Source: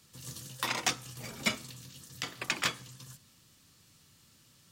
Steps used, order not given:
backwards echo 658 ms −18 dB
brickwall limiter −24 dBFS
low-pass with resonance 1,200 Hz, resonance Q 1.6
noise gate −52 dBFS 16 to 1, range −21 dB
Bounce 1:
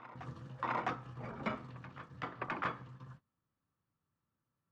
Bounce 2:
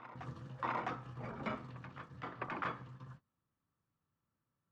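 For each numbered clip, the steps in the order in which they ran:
noise gate, then backwards echo, then low-pass with resonance, then brickwall limiter
noise gate, then backwards echo, then brickwall limiter, then low-pass with resonance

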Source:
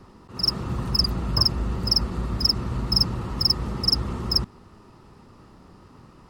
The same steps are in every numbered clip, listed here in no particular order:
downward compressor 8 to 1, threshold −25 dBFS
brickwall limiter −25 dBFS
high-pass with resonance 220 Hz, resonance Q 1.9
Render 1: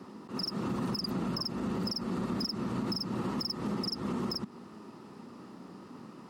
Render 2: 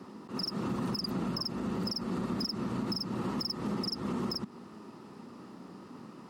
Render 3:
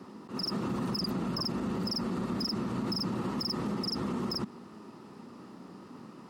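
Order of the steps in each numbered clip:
high-pass with resonance, then downward compressor, then brickwall limiter
downward compressor, then high-pass with resonance, then brickwall limiter
high-pass with resonance, then brickwall limiter, then downward compressor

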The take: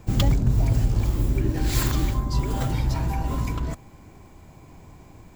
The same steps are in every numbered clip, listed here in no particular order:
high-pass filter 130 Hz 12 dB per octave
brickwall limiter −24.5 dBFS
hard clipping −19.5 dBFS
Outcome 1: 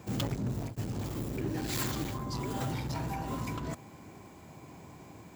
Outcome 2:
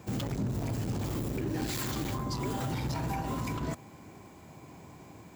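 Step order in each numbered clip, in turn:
hard clipping, then brickwall limiter, then high-pass filter
hard clipping, then high-pass filter, then brickwall limiter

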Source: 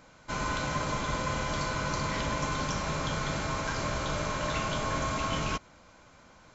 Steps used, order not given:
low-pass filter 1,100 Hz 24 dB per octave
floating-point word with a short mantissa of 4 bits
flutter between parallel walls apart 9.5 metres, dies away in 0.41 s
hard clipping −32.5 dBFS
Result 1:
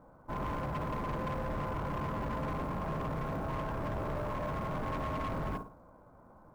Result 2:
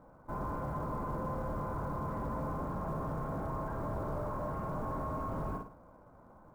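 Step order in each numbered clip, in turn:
low-pass filter, then floating-point word with a short mantissa, then flutter between parallel walls, then hard clipping
flutter between parallel walls, then hard clipping, then low-pass filter, then floating-point word with a short mantissa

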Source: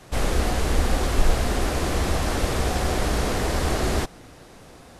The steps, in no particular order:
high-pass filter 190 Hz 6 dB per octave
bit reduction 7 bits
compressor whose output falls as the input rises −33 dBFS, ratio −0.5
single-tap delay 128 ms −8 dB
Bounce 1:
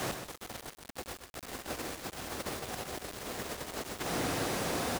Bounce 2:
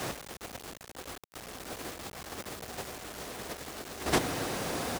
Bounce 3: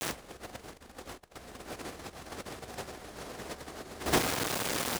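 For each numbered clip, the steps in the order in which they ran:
compressor whose output falls as the input rises, then high-pass filter, then bit reduction, then single-tap delay
single-tap delay, then compressor whose output falls as the input rises, then bit reduction, then high-pass filter
single-tap delay, then bit reduction, then compressor whose output falls as the input rises, then high-pass filter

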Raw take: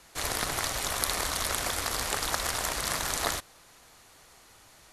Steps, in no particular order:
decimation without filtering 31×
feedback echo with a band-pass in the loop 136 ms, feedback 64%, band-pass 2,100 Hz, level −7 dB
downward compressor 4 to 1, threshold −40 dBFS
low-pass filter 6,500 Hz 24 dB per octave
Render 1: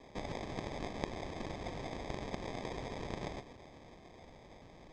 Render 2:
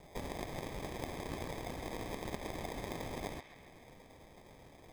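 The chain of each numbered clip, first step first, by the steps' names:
downward compressor, then feedback echo with a band-pass in the loop, then decimation without filtering, then low-pass filter
low-pass filter, then downward compressor, then decimation without filtering, then feedback echo with a band-pass in the loop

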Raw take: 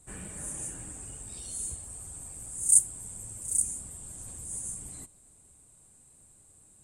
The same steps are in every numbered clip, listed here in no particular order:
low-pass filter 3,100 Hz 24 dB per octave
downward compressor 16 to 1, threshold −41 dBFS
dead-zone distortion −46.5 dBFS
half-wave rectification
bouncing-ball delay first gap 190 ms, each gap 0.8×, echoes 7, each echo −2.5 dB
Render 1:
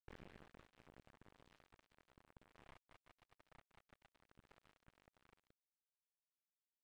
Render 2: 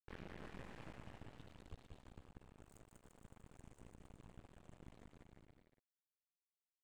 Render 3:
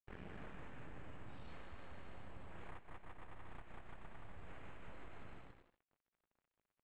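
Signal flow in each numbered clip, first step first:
bouncing-ball delay, then downward compressor, then half-wave rectification, then low-pass filter, then dead-zone distortion
low-pass filter, then dead-zone distortion, then downward compressor, then bouncing-ball delay, then half-wave rectification
half-wave rectification, then bouncing-ball delay, then dead-zone distortion, then downward compressor, then low-pass filter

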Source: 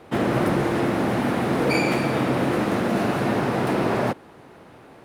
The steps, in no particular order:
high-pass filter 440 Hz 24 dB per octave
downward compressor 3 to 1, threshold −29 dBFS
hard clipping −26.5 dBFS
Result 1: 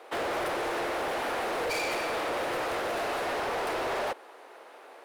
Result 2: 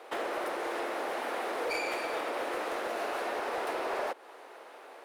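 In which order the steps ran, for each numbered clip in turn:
high-pass filter, then hard clipping, then downward compressor
downward compressor, then high-pass filter, then hard clipping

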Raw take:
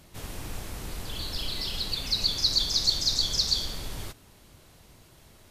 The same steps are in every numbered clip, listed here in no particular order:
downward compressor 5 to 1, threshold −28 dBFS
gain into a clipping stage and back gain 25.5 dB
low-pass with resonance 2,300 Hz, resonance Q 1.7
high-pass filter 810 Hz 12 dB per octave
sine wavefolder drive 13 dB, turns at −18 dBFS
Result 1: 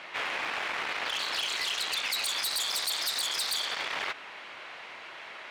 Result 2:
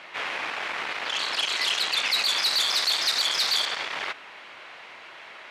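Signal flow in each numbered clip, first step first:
low-pass with resonance, then sine wavefolder, then high-pass filter, then downward compressor, then gain into a clipping stage and back
gain into a clipping stage and back, then low-pass with resonance, then downward compressor, then sine wavefolder, then high-pass filter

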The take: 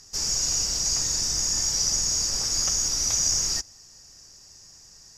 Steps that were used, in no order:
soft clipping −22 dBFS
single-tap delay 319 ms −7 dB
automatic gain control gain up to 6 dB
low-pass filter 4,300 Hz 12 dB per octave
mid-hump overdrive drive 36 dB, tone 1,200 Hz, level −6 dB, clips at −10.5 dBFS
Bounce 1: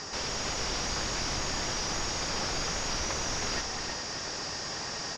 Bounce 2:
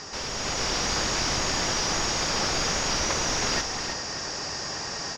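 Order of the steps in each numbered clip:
automatic gain control, then mid-hump overdrive, then single-tap delay, then soft clipping, then low-pass filter
mid-hump overdrive, then low-pass filter, then soft clipping, then automatic gain control, then single-tap delay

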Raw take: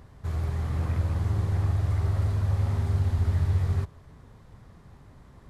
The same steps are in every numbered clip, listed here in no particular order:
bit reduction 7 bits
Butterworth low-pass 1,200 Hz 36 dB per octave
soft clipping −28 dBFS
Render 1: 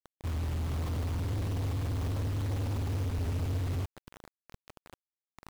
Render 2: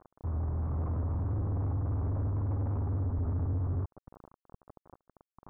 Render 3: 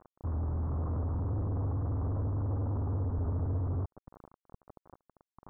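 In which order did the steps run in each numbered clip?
Butterworth low-pass, then soft clipping, then bit reduction
bit reduction, then Butterworth low-pass, then soft clipping
soft clipping, then bit reduction, then Butterworth low-pass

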